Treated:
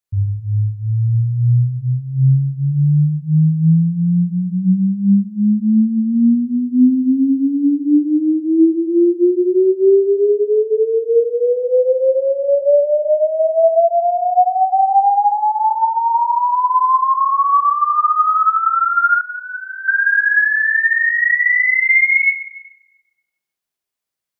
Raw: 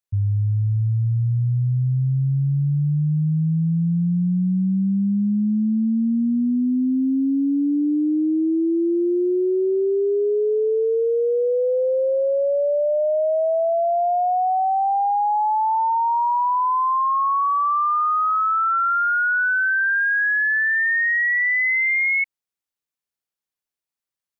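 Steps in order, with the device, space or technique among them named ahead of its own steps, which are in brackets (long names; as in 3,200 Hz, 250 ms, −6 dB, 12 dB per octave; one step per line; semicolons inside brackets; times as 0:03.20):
bathroom (convolution reverb RT60 1.0 s, pre-delay 40 ms, DRR −1 dB)
0:19.21–0:19.88: first difference
level +1.5 dB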